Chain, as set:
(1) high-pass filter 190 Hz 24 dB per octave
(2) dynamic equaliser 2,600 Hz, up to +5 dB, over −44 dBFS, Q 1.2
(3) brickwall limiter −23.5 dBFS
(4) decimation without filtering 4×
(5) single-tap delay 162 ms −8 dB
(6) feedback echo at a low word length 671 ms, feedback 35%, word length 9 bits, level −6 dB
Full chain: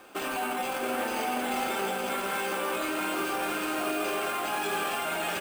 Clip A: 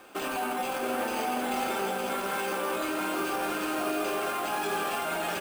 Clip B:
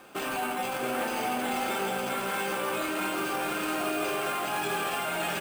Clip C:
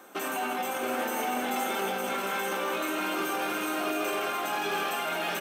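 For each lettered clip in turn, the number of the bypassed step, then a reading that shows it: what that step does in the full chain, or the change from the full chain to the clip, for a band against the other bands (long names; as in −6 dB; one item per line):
2, 4 kHz band −2.0 dB
1, 125 Hz band +4.5 dB
4, distortion level −7 dB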